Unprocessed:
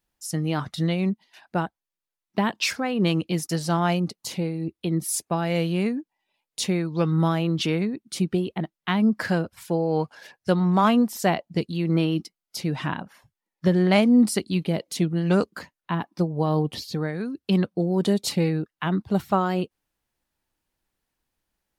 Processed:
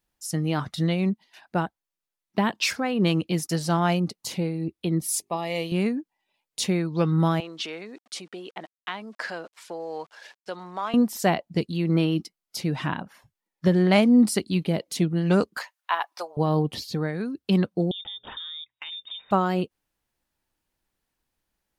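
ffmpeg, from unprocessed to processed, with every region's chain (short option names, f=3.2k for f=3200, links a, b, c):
-filter_complex "[0:a]asettb=1/sr,asplit=3[a][b][c];[a]atrim=end=5.014[d];[b]atrim=start=5.01:end=5.72,asetpts=PTS-STARTPTS,afade=t=in:d=0.004:c=qsin,afade=t=out:st=0.706:d=0.004:c=qsin,asuperstop=centerf=1500:order=4:qfactor=2.7,equalizer=f=120:t=o:w=2.7:g=-11.5,bandreject=f=50:t=h:w=6,bandreject=f=100:t=h:w=6,bandreject=f=150:t=h:w=6,bandreject=f=200:t=h:w=6,bandreject=f=250:t=h:w=6,bandreject=f=300:t=h:w=6,bandreject=f=350:t=h:w=6,bandreject=f=400:t=h:w=6[e];[c]atrim=start=5.716[f];[d][e]acrossfade=d=0.004:c1=hsin:c2=qsin[g];[g][f]acrossfade=d=0.004:c1=qsin:c2=hsin,asettb=1/sr,asplit=3[h][i][j];[h]atrim=end=7.404[k];[i]atrim=start=7.4:end=10.94,asetpts=PTS-STARTPTS,afade=t=in:d=0.004:c=qsin,afade=t=out:st=3.536:d=0.004:c=qsin,acompressor=threshold=-27dB:ratio=2.5:attack=3.2:release=140:knee=1:detection=peak,aeval=exprs='val(0)*gte(abs(val(0)),0.00282)':c=same,highpass=510,lowpass=7.6k[l];[j]atrim=start=10.936[m];[k][l]acrossfade=d=0.004:c1=hsin:c2=qsin[n];[n][m]acrossfade=d=0.004:c1=qsin:c2=hsin,asettb=1/sr,asplit=3[o][p][q];[o]atrim=end=15.574[r];[p]atrim=start=15.57:end=16.37,asetpts=PTS-STARTPTS,afade=t=in:d=0.004:c=qsin,afade=t=out:st=0.796:d=0.004:c=qsin,highpass=f=690:w=0.5412,highpass=f=690:w=1.3066,acontrast=58[s];[q]atrim=start=16.366[t];[r][s]acrossfade=d=0.004:c1=hsin:c2=qsin[u];[u][t]acrossfade=d=0.004:c1=qsin:c2=hsin,asettb=1/sr,asplit=3[v][w][x];[v]atrim=end=17.914[y];[w]atrim=start=17.91:end=19.31,asetpts=PTS-STARTPTS,afade=t=in:d=0.004:c=qsin,afade=t=out:st=1.396:d=0.004:c=qsin,lowpass=f=3.2k:t=q:w=0.5098,lowpass=f=3.2k:t=q:w=0.6013,lowpass=f=3.2k:t=q:w=0.9,lowpass=f=3.2k:t=q:w=2.563,afreqshift=-3800,bandreject=f=60:t=h:w=6,bandreject=f=120:t=h:w=6,bandreject=f=180:t=h:w=6,bandreject=f=240:t=h:w=6,bandreject=f=300:t=h:w=6,bandreject=f=360:t=h:w=6,bandreject=f=420:t=h:w=6,bandreject=f=480:t=h:w=6,bandreject=f=540:t=h:w=6,acompressor=threshold=-34dB:ratio=8:attack=3.2:release=140:knee=1:detection=peak[z];[x]atrim=start=19.306[aa];[y][z]acrossfade=d=0.004:c1=hsin:c2=qsin[ab];[ab][aa]acrossfade=d=0.004:c1=qsin:c2=hsin"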